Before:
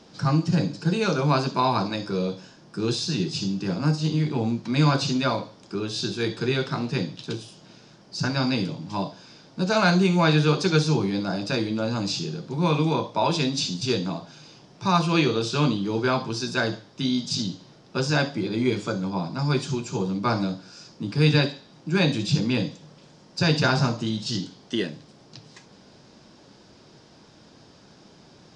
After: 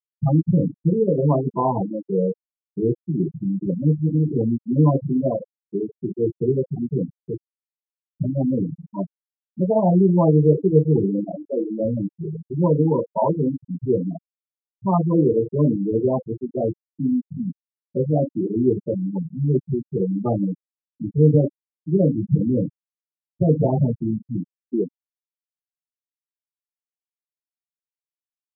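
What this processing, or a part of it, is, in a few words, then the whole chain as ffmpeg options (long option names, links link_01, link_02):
under water: -filter_complex "[0:a]asettb=1/sr,asplit=3[link_01][link_02][link_03];[link_01]atrim=end=11.244[link_04];[link_02]atrim=start=11.24:end=11.8,asetpts=PTS-STARTPTS,afade=type=in:duration=0.004:curve=qsin,afade=type=out:start_time=0.556:duration=0.004:curve=qsin,highpass=260[link_05];[link_03]atrim=start=11.796[link_06];[link_04][link_05]acrossfade=duration=0.004:curve1=hsin:curve2=qsin[link_07];[link_07][link_06]acrossfade=duration=0.004:curve1=qsin:curve2=hsin,lowpass=frequency=920:width=0.5412,lowpass=frequency=920:width=1.3066,equalizer=frequency=480:width_type=o:width=0.49:gain=4,afftfilt=real='re*gte(hypot(re,im),0.2)':imag='im*gte(hypot(re,im),0.2)':win_size=1024:overlap=0.75,volume=4dB"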